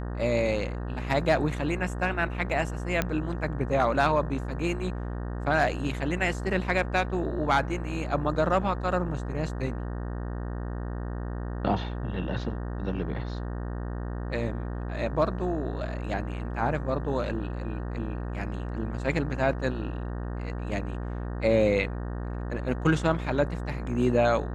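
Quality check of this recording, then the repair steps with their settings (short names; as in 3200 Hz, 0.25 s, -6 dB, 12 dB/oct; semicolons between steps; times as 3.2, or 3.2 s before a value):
buzz 60 Hz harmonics 31 -33 dBFS
3.02 pop -11 dBFS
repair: de-click; de-hum 60 Hz, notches 31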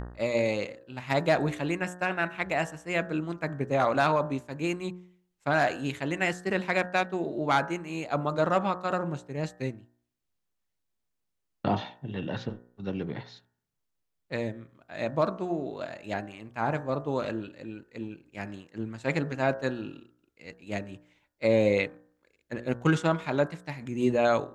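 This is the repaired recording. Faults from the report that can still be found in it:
none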